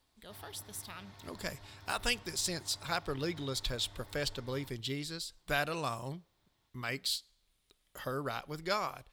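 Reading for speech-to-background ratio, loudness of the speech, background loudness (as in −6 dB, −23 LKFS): 18.5 dB, −37.0 LKFS, −55.5 LKFS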